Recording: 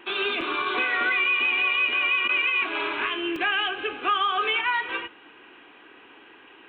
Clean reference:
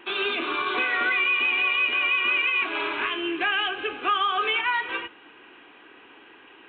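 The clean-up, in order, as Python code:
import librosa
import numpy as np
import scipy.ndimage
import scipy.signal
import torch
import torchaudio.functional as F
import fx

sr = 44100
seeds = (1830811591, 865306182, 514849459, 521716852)

y = fx.fix_interpolate(x, sr, at_s=(0.41, 3.36), length_ms=2.4)
y = fx.fix_interpolate(y, sr, at_s=(2.28,), length_ms=10.0)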